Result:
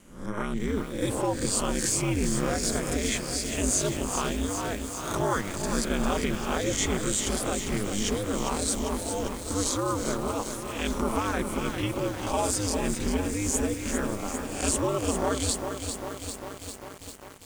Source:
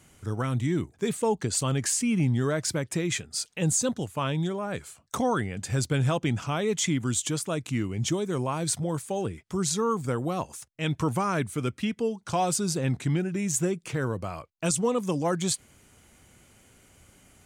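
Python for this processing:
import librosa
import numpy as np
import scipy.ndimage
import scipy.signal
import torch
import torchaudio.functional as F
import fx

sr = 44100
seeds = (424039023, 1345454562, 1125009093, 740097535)

y = fx.spec_swells(x, sr, rise_s=0.59)
y = y * np.sin(2.0 * np.pi * 100.0 * np.arange(len(y)) / sr)
y = fx.echo_crushed(y, sr, ms=399, feedback_pct=80, bits=7, wet_db=-7.0)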